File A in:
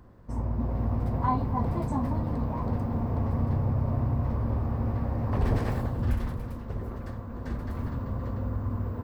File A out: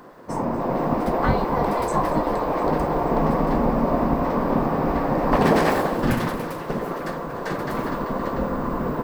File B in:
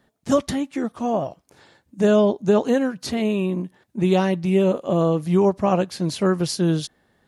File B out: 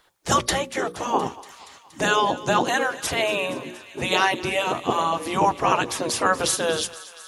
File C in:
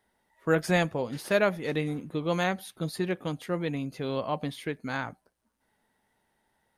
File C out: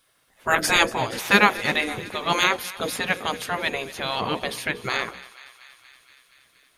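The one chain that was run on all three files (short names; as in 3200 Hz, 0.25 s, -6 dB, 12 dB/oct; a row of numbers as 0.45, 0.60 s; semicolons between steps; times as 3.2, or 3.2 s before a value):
notches 60/120/180/240/300/360/420/480/540 Hz; spectral gate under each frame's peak -10 dB weak; thinning echo 0.236 s, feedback 77%, high-pass 840 Hz, level -17 dB; match loudness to -23 LUFS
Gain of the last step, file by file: +16.0, +9.5, +14.5 dB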